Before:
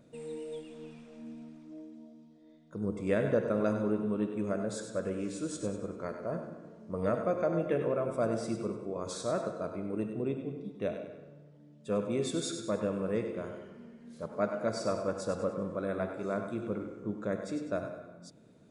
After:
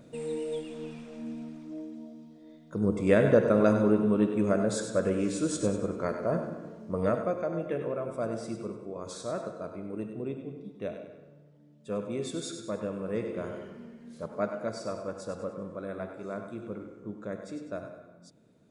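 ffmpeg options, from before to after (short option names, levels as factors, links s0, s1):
-af "volume=5.01,afade=t=out:st=6.66:d=0.77:silence=0.354813,afade=t=in:st=13.04:d=0.59:silence=0.446684,afade=t=out:st=13.63:d=1.19:silence=0.375837"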